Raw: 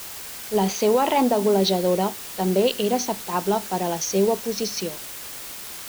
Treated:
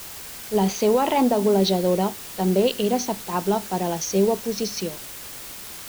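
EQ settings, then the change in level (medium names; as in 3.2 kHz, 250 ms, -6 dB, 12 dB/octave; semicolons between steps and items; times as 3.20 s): bass shelf 260 Hz +5.5 dB; -1.5 dB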